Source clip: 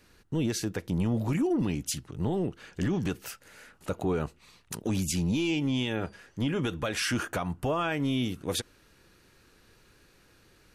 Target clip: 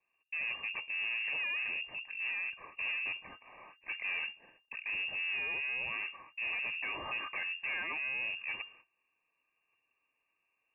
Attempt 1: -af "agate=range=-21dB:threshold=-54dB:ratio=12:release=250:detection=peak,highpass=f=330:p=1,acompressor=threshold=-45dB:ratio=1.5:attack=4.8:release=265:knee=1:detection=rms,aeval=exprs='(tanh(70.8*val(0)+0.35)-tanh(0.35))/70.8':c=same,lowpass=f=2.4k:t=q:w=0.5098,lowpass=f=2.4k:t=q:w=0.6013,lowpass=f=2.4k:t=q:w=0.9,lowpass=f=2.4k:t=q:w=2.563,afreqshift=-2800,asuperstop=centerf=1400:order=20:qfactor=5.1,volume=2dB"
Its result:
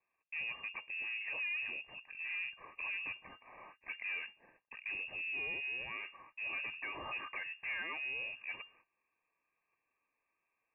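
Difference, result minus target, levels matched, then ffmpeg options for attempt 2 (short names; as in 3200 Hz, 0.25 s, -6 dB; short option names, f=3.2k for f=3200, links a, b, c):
compressor: peak gain reduction +7.5 dB; 250 Hz band +2.5 dB
-af "agate=range=-21dB:threshold=-54dB:ratio=12:release=250:detection=peak,aeval=exprs='(tanh(70.8*val(0)+0.35)-tanh(0.35))/70.8':c=same,lowpass=f=2.4k:t=q:w=0.5098,lowpass=f=2.4k:t=q:w=0.6013,lowpass=f=2.4k:t=q:w=0.9,lowpass=f=2.4k:t=q:w=2.563,afreqshift=-2800,asuperstop=centerf=1400:order=20:qfactor=5.1,volume=2dB"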